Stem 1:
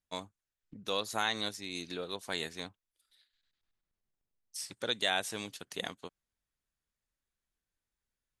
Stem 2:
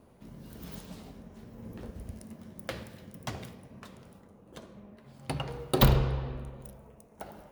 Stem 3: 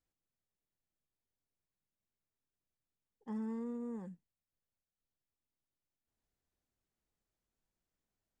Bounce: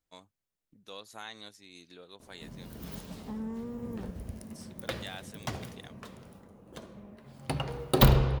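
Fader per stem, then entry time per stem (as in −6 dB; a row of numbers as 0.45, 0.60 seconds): −12.0, +1.5, +1.5 decibels; 0.00, 2.20, 0.00 seconds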